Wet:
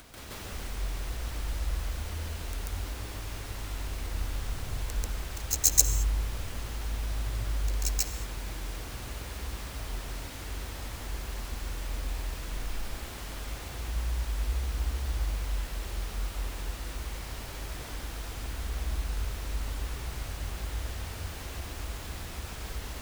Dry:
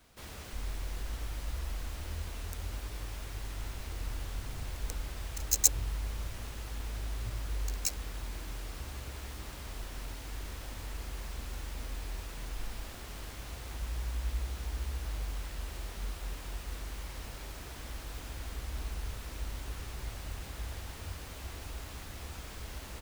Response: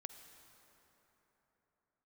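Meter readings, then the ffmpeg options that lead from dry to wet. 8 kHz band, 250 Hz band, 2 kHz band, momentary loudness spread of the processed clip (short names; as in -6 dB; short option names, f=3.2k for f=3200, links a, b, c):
+4.5 dB, +4.5 dB, +4.5 dB, 8 LU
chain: -filter_complex "[0:a]acompressor=mode=upward:threshold=-40dB:ratio=2.5,asplit=2[a][b];[1:a]atrim=start_sample=2205,afade=t=out:st=0.28:d=0.01,atrim=end_sample=12789,adelay=139[c];[b][c]afir=irnorm=-1:irlink=0,volume=9.5dB[d];[a][d]amix=inputs=2:normalize=0,volume=-1.5dB"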